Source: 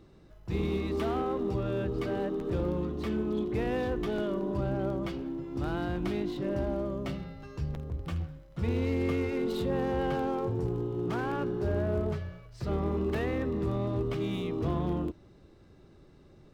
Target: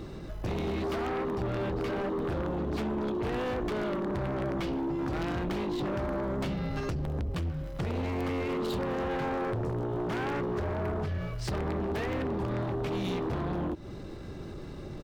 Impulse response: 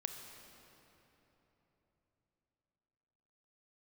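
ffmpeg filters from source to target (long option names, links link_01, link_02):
-af "acompressor=threshold=-40dB:ratio=6,aeval=exprs='0.0237*(cos(1*acos(clip(val(0)/0.0237,-1,1)))-cos(1*PI/2))+0.000944*(cos(3*acos(clip(val(0)/0.0237,-1,1)))-cos(3*PI/2))+0.0106*(cos(5*acos(clip(val(0)/0.0237,-1,1)))-cos(5*PI/2))+0.00015*(cos(6*acos(clip(val(0)/0.0237,-1,1)))-cos(6*PI/2))+0.00133*(cos(7*acos(clip(val(0)/0.0237,-1,1)))-cos(7*PI/2))':channel_layout=same,atempo=1.1,volume=7dB"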